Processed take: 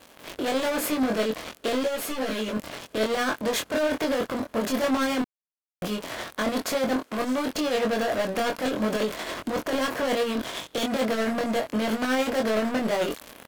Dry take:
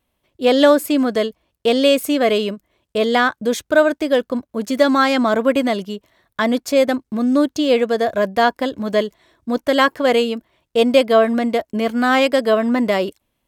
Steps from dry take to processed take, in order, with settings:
compressor on every frequency bin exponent 0.6
0:06.96–0:07.48: high-pass filter 490 Hz 6 dB per octave
0:10.34–0:10.86: parametric band 3,500 Hz +11.5 dB 0.36 octaves
leveller curve on the samples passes 5
transient designer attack −5 dB, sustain +10 dB
0:05.22–0:05.82: silence
brickwall limiter −18 dBFS, peak gain reduction 26.5 dB
shaped tremolo triangle 11 Hz, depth 50%
double-tracking delay 23 ms −3 dB
0:01.83–0:02.52: string-ensemble chorus
level −4 dB

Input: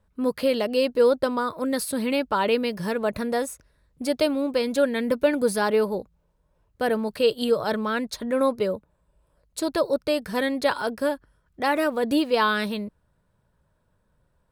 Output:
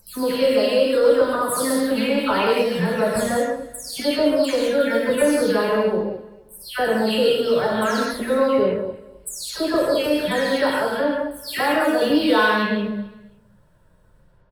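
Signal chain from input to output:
every frequency bin delayed by itself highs early, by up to 307 ms
low-shelf EQ 130 Hz +4.5 dB
in parallel at +0.5 dB: downward compressor, threshold −36 dBFS, peak gain reduction 19.5 dB
on the sum: soft clipping −9 dBFS, distortion −26 dB
on a send: repeating echo 264 ms, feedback 25%, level −19.5 dB
on the sum: reverb whose tail is shaped and stops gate 230 ms flat, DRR −2 dB

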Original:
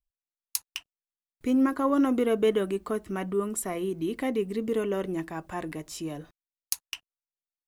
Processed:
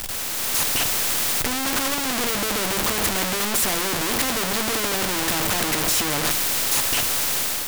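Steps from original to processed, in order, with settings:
sign of each sample alone
automatic gain control gain up to 12 dB
on a send at −9.5 dB: convolution reverb RT60 0.30 s, pre-delay 4 ms
on the sum: every bin compressed towards the loudest bin 2 to 1

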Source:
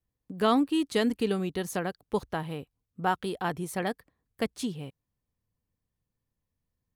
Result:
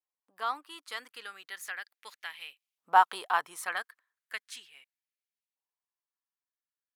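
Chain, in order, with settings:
source passing by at 0:03.08, 15 m/s, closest 11 metres
auto-filter high-pass saw up 0.36 Hz 840–2,700 Hz
level +1.5 dB

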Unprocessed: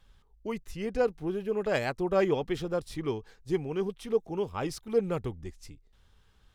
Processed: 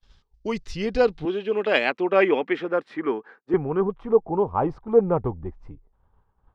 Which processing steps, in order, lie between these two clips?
0:01.25–0:03.54: Chebyshev high-pass filter 250 Hz, order 3
downward expander −53 dBFS
low-pass filter sweep 5,200 Hz → 940 Hz, 0:00.55–0:04.24
level +7 dB

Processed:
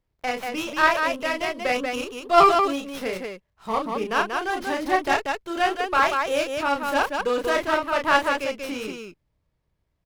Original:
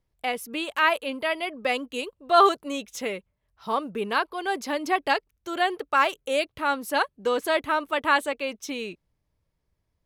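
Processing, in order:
loudspeakers that aren't time-aligned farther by 11 metres −4 dB, 64 metres −4 dB
windowed peak hold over 5 samples

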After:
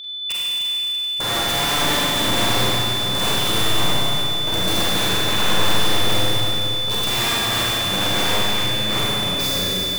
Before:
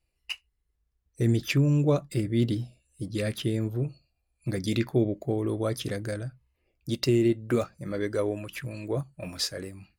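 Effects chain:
wrap-around overflow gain 25.5 dB
steady tone 3,500 Hz −34 dBFS
four-comb reverb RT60 3.8 s, combs from 33 ms, DRR −8 dB
level +2 dB

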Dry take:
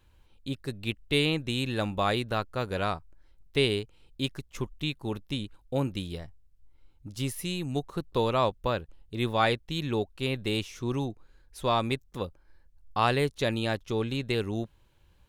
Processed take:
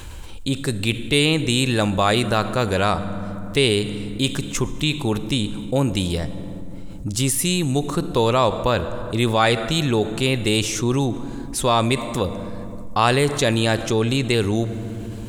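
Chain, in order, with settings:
parametric band 7,900 Hz +10.5 dB 0.73 octaves
on a send at −17.5 dB: convolution reverb RT60 2.4 s, pre-delay 28 ms
on the sum: envelope flattener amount 50%
level +6 dB

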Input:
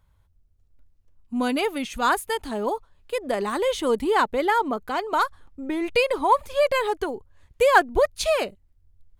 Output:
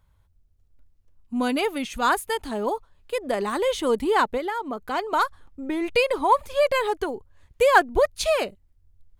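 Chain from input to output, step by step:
0:04.37–0:04.91: downward compressor 6 to 1, threshold −26 dBFS, peak gain reduction 8.5 dB

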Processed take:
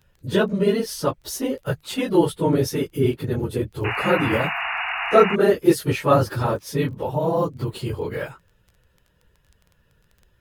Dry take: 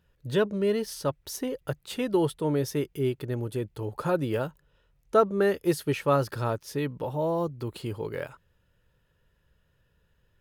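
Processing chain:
random phases in long frames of 50 ms
surface crackle 18 per second −45 dBFS
sound drawn into the spectrogram noise, 0:03.84–0:05.36, 650–2,900 Hz −33 dBFS
level +6.5 dB

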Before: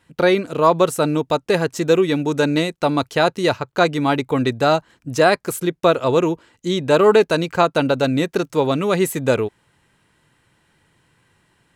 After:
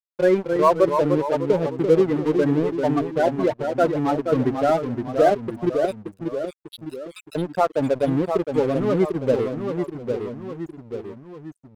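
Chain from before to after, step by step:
0:05.85–0:07.35: Butterworth high-pass 2,100 Hz 36 dB per octave
spectral peaks only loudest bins 8
dead-zone distortion −30 dBFS
pitch vibrato 1.5 Hz 40 cents
delay with pitch and tempo change per echo 251 ms, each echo −1 semitone, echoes 3, each echo −6 dB

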